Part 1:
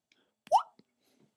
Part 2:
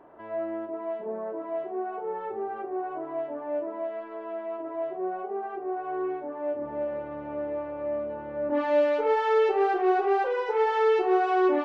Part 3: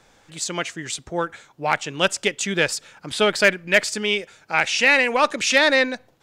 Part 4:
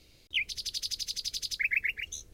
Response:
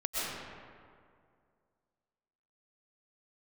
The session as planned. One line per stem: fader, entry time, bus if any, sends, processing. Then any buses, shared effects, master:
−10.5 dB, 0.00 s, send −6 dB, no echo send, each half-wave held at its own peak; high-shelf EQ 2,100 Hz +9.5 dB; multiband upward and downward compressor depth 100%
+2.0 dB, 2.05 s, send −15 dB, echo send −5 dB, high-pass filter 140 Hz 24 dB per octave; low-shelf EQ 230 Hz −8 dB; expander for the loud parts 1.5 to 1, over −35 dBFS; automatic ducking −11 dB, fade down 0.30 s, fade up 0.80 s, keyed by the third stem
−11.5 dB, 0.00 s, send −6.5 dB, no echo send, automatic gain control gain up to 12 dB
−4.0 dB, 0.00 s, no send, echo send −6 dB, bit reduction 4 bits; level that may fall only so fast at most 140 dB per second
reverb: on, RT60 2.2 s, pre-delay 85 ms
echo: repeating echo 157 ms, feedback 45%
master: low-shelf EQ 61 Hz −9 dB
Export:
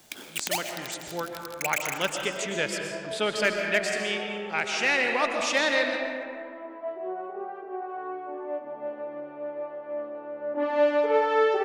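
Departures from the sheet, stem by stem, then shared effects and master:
stem 1: send −6 dB → −12 dB
stem 3: missing automatic gain control gain up to 12 dB

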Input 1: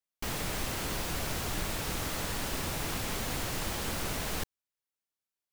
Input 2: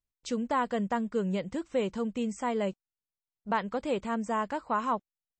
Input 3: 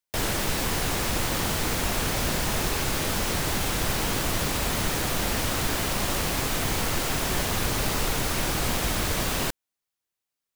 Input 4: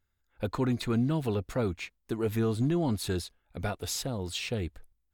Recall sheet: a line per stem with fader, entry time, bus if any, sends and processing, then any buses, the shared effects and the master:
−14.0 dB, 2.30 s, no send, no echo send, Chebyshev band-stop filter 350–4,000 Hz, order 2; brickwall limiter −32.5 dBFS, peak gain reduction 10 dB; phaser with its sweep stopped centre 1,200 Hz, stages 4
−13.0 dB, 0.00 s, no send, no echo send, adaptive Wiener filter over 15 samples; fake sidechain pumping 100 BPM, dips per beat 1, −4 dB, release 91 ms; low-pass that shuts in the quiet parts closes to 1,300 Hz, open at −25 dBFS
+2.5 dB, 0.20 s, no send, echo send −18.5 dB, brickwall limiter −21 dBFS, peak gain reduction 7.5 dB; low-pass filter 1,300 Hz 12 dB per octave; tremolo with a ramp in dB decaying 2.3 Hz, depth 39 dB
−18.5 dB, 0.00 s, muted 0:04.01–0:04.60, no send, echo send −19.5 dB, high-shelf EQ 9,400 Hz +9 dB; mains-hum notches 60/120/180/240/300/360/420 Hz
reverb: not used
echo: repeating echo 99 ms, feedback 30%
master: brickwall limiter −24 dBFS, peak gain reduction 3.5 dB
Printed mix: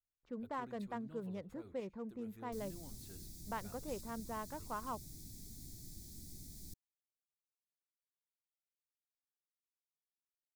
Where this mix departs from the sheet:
stem 1: missing brickwall limiter −32.5 dBFS, peak gain reduction 10 dB
stem 3: muted
stem 4 −18.5 dB → −26.5 dB

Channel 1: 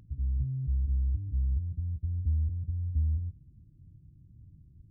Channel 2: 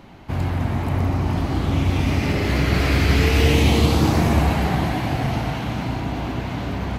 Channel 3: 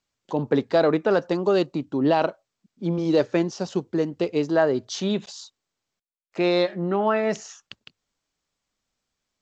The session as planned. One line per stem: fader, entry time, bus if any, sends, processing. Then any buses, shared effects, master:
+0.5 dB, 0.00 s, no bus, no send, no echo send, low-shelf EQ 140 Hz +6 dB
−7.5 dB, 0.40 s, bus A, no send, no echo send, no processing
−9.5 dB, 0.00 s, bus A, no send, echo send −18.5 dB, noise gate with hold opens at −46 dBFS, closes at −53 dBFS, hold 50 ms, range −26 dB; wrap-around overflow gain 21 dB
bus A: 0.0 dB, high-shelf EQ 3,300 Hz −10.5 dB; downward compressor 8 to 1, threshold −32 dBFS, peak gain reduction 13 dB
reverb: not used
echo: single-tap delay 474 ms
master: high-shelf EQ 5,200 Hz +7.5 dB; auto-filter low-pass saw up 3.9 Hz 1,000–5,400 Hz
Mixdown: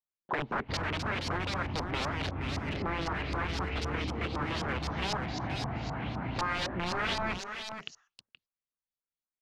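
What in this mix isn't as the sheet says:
stem 1: muted
stem 3 −9.5 dB → +1.5 dB

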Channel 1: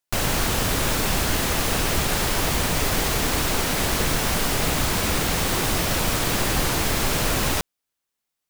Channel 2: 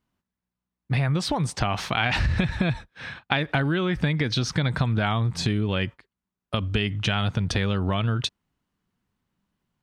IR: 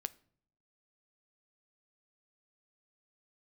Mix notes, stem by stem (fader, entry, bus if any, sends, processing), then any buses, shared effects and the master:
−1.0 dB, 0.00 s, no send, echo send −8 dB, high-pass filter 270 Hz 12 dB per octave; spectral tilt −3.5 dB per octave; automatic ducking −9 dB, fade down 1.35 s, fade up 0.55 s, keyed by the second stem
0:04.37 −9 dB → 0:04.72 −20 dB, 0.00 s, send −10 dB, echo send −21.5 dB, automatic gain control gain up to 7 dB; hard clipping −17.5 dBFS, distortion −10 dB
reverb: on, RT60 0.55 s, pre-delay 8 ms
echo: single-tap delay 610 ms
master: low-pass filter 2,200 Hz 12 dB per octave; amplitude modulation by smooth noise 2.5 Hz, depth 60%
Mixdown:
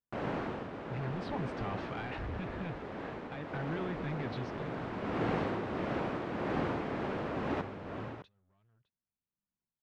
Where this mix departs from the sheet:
stem 1 −1.0 dB → −7.0 dB
stem 2 −9.0 dB → −16.5 dB

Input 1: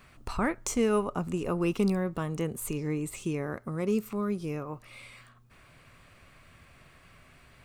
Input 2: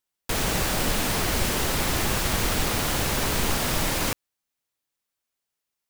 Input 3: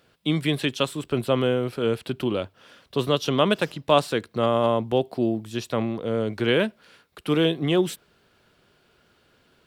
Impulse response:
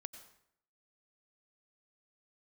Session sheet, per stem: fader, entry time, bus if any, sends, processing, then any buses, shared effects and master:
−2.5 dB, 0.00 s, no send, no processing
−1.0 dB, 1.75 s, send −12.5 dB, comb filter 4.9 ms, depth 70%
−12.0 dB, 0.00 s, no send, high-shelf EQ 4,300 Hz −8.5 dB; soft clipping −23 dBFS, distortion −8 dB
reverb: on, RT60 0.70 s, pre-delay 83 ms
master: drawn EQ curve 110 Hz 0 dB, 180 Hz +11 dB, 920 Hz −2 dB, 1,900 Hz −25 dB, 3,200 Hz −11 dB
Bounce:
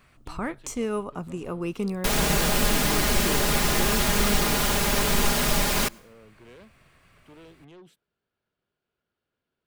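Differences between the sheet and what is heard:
stem 3 −12.0 dB → −22.5 dB
master: missing drawn EQ curve 110 Hz 0 dB, 180 Hz +11 dB, 920 Hz −2 dB, 1,900 Hz −25 dB, 3,200 Hz −11 dB

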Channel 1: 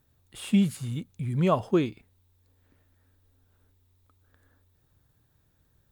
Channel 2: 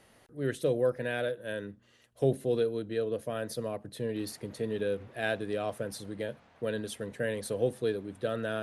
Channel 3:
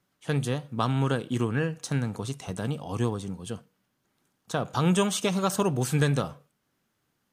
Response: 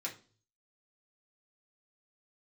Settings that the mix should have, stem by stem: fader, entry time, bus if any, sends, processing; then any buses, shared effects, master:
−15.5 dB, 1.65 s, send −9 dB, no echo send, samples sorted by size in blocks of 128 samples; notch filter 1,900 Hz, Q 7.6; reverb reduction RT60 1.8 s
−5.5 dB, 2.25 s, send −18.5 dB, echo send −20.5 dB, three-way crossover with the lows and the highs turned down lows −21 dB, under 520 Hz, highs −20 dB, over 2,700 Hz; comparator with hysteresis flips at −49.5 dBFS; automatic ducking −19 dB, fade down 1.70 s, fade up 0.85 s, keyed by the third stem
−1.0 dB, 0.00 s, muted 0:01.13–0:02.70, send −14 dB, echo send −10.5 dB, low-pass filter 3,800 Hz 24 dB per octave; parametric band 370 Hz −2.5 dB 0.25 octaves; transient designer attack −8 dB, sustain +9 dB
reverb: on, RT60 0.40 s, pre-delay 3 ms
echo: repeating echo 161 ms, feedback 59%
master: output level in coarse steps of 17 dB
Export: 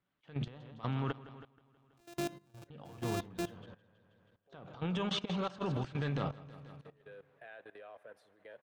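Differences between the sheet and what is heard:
stem 1: send −9 dB → −1.5 dB
stem 2: missing comparator with hysteresis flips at −49.5 dBFS
stem 3 −1.0 dB → −7.5 dB

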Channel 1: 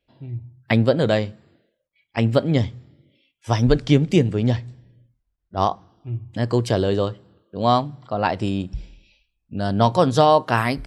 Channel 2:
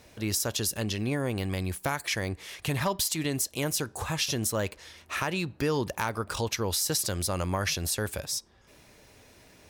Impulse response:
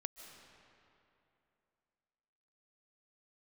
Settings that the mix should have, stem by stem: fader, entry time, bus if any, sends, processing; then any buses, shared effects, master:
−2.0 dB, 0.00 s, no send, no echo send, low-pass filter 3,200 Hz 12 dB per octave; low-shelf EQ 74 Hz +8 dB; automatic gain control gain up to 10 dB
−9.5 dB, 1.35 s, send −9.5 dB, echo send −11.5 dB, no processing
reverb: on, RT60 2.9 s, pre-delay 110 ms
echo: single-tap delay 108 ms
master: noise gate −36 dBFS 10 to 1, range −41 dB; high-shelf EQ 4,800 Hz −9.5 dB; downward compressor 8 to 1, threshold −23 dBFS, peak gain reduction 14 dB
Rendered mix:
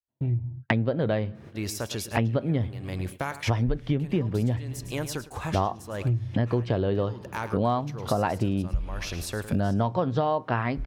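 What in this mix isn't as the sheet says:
stem 1 −2.0 dB → +7.5 dB
stem 2 −9.5 dB → −2.0 dB

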